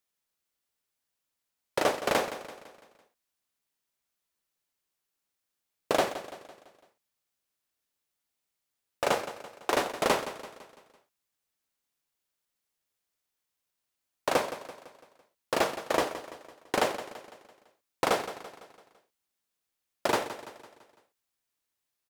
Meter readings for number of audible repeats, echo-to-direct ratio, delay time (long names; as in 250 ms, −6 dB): 4, −12.0 dB, 168 ms